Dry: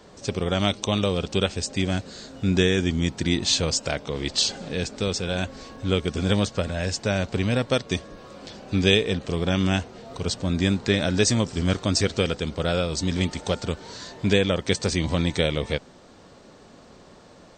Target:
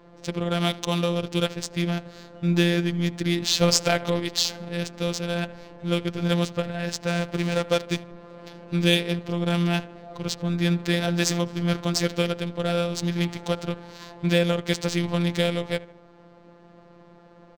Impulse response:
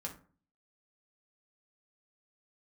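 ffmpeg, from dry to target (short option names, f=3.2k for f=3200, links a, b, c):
-filter_complex "[0:a]asettb=1/sr,asplit=3[a][b][c];[a]atrim=end=3.614[d];[b]atrim=start=3.61:end=4.2,asetpts=PTS-STARTPTS,afade=t=in:d=0.004:c=qsin,afade=t=out:st=0.586:d=0.004:c=qsin,acontrast=67[e];[c]atrim=start=4.196[f];[d][e]acrossfade=d=0.004:c1=hsin:c2=qsin[g];[g][f]acrossfade=d=0.004:c1=qsin:c2=hsin,asettb=1/sr,asplit=3[h][i][j];[h]atrim=end=7.074[k];[i]atrim=start=7.07:end=8.03,asetpts=PTS-STARTPTS,afade=t=in:d=0.004:c=qsin,afade=t=out:st=0.956:d=0.004:c=qsin,acrusher=bits=3:mode=log:mix=0:aa=0.000001[l];[j]atrim=start=8.026[m];[k][l]acrossfade=d=0.004:c1=hsin:c2=qsin[n];[n][m]acrossfade=d=0.004:c1=qsin:c2=hsin,asplit=2[o][p];[p]adelay=77,lowpass=f=4.1k:p=1,volume=-18dB,asplit=2[q][r];[r]adelay=77,lowpass=f=4.1k:p=1,volume=0.51,asplit=2[s][t];[t]adelay=77,lowpass=f=4.1k:p=1,volume=0.51,asplit=2[u][v];[v]adelay=77,lowpass=f=4.1k:p=1,volume=0.51[w];[o][q][s][u][w]amix=inputs=5:normalize=0,afftfilt=real='hypot(re,im)*cos(PI*b)':imag='0':win_size=1024:overlap=0.75,adynamicsmooth=sensitivity=5:basefreq=2k,volume=2.5dB"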